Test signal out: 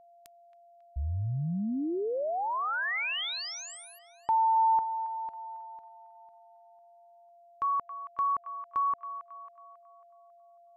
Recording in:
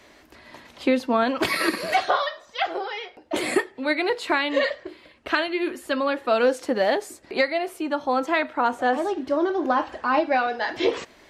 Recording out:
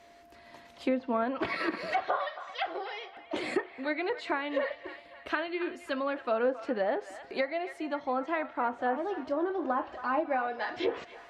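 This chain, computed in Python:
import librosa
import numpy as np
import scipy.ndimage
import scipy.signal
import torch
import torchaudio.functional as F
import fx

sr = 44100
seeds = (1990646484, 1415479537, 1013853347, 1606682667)

y = fx.echo_wet_bandpass(x, sr, ms=273, feedback_pct=45, hz=1400.0, wet_db=-12.5)
y = fx.env_lowpass_down(y, sr, base_hz=1700.0, full_db=-17.0)
y = y + 10.0 ** (-47.0 / 20.0) * np.sin(2.0 * np.pi * 690.0 * np.arange(len(y)) / sr)
y = y * librosa.db_to_amplitude(-8.0)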